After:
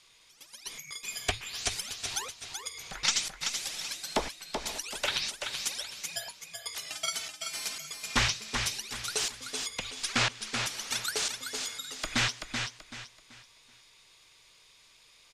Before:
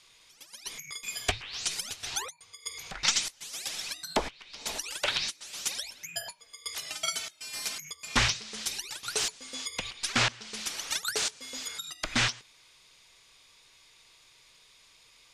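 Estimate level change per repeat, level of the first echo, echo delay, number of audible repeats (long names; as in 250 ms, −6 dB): −10.0 dB, −6.0 dB, 382 ms, 3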